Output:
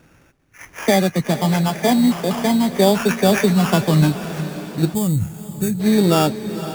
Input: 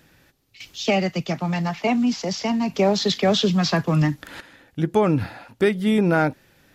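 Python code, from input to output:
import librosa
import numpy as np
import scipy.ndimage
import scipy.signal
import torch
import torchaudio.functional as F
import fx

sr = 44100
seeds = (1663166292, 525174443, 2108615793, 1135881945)

p1 = fx.freq_compress(x, sr, knee_hz=1100.0, ratio=1.5)
p2 = fx.high_shelf(p1, sr, hz=3900.0, db=-11.5)
p3 = fx.rider(p2, sr, range_db=10, speed_s=0.5)
p4 = p2 + (p3 * 10.0 ** (-2.5 / 20.0))
p5 = fx.sample_hold(p4, sr, seeds[0], rate_hz=4100.0, jitter_pct=0)
p6 = p5 + fx.echo_diffused(p5, sr, ms=495, feedback_pct=58, wet_db=-12.5, dry=0)
y = fx.spec_box(p6, sr, start_s=4.94, length_s=0.86, low_hz=230.0, high_hz=6300.0, gain_db=-14)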